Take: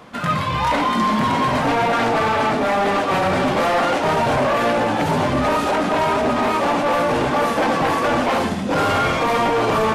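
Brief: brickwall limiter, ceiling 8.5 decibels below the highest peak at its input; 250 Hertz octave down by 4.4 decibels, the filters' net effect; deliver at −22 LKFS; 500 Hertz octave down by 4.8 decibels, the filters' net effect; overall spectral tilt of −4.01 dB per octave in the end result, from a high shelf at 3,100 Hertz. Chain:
parametric band 250 Hz −4 dB
parametric band 500 Hz −5.5 dB
high-shelf EQ 3,100 Hz +5 dB
level +2 dB
brickwall limiter −15.5 dBFS

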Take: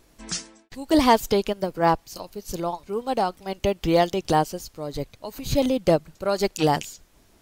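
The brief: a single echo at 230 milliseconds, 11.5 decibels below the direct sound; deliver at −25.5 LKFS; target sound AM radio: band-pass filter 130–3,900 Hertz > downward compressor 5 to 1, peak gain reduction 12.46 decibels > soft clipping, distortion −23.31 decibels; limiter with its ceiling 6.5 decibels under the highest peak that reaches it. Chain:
brickwall limiter −15 dBFS
band-pass filter 130–3,900 Hz
single-tap delay 230 ms −11.5 dB
downward compressor 5 to 1, threshold −32 dBFS
soft clipping −24 dBFS
level +12 dB

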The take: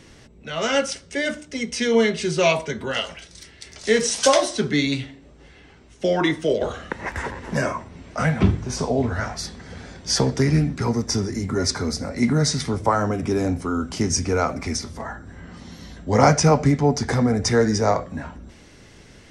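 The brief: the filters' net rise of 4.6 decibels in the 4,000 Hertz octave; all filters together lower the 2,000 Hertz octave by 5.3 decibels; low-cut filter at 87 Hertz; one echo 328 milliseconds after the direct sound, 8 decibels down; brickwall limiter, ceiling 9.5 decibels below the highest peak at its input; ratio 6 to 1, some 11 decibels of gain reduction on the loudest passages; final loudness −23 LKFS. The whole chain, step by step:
high-pass filter 87 Hz
parametric band 2,000 Hz −9 dB
parametric band 4,000 Hz +8.5 dB
downward compressor 6 to 1, threshold −23 dBFS
brickwall limiter −21 dBFS
single-tap delay 328 ms −8 dB
level +7.5 dB

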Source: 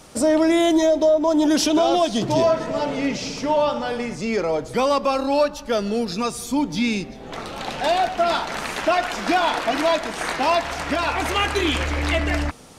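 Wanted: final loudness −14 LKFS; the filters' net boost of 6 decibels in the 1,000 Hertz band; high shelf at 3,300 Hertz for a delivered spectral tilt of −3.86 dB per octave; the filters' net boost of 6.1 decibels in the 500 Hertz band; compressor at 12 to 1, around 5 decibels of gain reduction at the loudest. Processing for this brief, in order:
parametric band 500 Hz +6 dB
parametric band 1,000 Hz +5 dB
high-shelf EQ 3,300 Hz +5.5 dB
downward compressor 12 to 1, threshold −13 dBFS
level +5 dB

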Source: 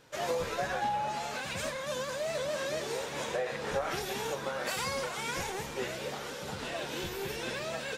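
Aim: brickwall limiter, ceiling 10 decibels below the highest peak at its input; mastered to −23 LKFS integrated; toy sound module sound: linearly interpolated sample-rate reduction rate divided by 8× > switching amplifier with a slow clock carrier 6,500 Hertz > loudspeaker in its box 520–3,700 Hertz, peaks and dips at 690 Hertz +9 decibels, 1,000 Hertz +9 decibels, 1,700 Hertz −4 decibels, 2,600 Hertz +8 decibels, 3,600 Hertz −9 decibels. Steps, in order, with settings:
brickwall limiter −30.5 dBFS
linearly interpolated sample-rate reduction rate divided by 8×
switching amplifier with a slow clock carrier 6,500 Hz
loudspeaker in its box 520–3,700 Hz, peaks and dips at 690 Hz +9 dB, 1,000 Hz +9 dB, 1,700 Hz −4 dB, 2,600 Hz +8 dB, 3,600 Hz −9 dB
level +14.5 dB

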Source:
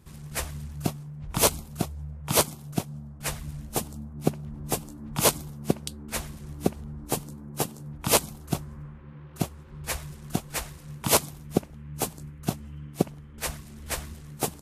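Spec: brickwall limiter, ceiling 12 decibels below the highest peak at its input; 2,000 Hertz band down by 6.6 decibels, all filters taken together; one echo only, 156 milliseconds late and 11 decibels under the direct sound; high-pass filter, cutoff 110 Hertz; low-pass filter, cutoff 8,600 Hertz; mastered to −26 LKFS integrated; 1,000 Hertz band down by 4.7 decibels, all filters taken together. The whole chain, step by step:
high-pass filter 110 Hz
low-pass filter 8,600 Hz
parametric band 1,000 Hz −4.5 dB
parametric band 2,000 Hz −7.5 dB
brickwall limiter −19 dBFS
single-tap delay 156 ms −11 dB
level +11 dB

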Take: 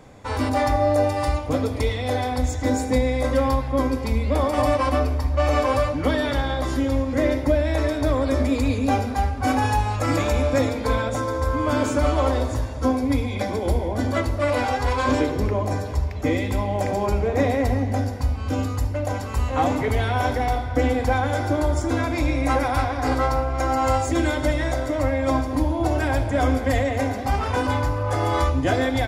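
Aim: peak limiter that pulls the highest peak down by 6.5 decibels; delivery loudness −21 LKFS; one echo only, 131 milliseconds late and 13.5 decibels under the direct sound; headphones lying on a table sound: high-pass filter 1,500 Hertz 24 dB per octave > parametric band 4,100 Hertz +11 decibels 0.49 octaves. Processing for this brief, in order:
brickwall limiter −15 dBFS
high-pass filter 1,500 Hz 24 dB per octave
parametric band 4,100 Hz +11 dB 0.49 octaves
single-tap delay 131 ms −13.5 dB
level +12 dB

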